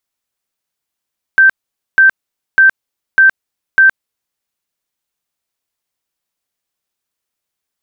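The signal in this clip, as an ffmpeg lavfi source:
ffmpeg -f lavfi -i "aevalsrc='0.668*sin(2*PI*1560*mod(t,0.6))*lt(mod(t,0.6),181/1560)':duration=3:sample_rate=44100" out.wav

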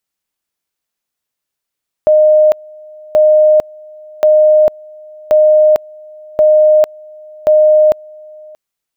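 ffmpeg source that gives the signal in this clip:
ffmpeg -f lavfi -i "aevalsrc='pow(10,(-4.5-27*gte(mod(t,1.08),0.45))/20)*sin(2*PI*614*t)':duration=6.48:sample_rate=44100" out.wav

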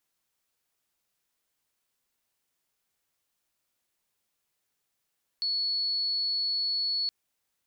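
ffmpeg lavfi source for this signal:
ffmpeg -f lavfi -i "aevalsrc='0.0501*sin(2*PI*4400*t)':duration=1.67:sample_rate=44100" out.wav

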